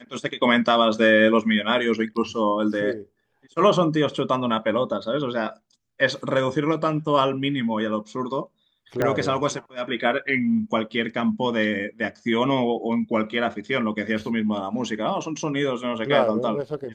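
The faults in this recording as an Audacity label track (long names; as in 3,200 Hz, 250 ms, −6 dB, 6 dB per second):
9.020000	9.020000	click −10 dBFS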